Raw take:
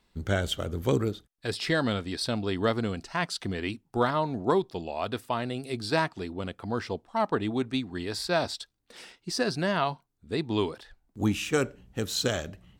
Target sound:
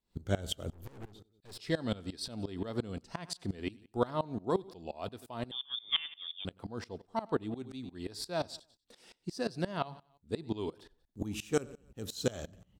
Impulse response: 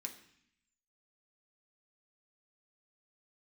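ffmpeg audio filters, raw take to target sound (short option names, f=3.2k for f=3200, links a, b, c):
-filter_complex "[0:a]equalizer=f=1.8k:w=0.75:g=-7,asplit=2[a][b];[b]aecho=0:1:94|188|282:0.1|0.042|0.0176[c];[a][c]amix=inputs=2:normalize=0,asettb=1/sr,asplit=3[d][e][f];[d]atrim=end=0.704[g];[e]atrim=start=0.7:end=1.59,asetpts=PTS-STARTPTS,afade=t=in:d=0.004:c=qsin,afade=t=out:st=0.886:d=0.004:c=qsin,aeval=exprs='(tanh(100*val(0)+0.5)-tanh(0.5))/100':c=same[h];[f]atrim=start=1.586[i];[g][h]acrossfade=d=0.004:c1=hsin:c2=qsin[j];[j][i]acrossfade=d=0.004:c1=qsin:c2=hsin,asettb=1/sr,asplit=3[k][l][m];[k]atrim=end=5.514[n];[l]atrim=start=5.51:end=6.45,asetpts=PTS-STARTPTS,afade=t=in:d=0.004:c=qsin,afade=t=out:st=0.936:d=0.004:c=qsin,lowpass=f=3.1k:t=q:w=0.5098,lowpass=f=3.1k:t=q:w=0.6013,lowpass=f=3.1k:t=q:w=0.9,lowpass=f=3.1k:t=q:w=2.563,afreqshift=-3700[o];[m]atrim=start=6.446[p];[n][o]acrossfade=d=0.004:c1=hsin:c2=qsin[q];[q][p]acrossfade=d=0.004:c1=qsin:c2=hsin,aeval=exprs='val(0)*pow(10,-21*if(lt(mod(-5.7*n/s,1),2*abs(-5.7)/1000),1-mod(-5.7*n/s,1)/(2*abs(-5.7)/1000),(mod(-5.7*n/s,1)-2*abs(-5.7)/1000)/(1-2*abs(-5.7)/1000))/20)':c=same"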